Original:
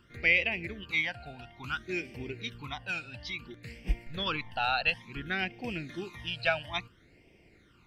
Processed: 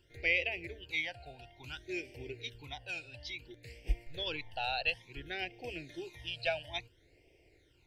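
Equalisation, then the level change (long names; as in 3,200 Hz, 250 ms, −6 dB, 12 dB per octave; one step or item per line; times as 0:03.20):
phaser with its sweep stopped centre 500 Hz, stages 4
−2.0 dB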